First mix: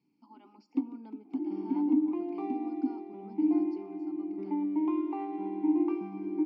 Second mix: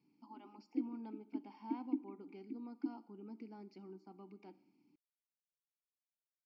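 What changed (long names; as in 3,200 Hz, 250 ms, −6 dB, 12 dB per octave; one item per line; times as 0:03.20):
first sound: add pair of resonant band-passes 860 Hz, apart 2.8 octaves
second sound: muted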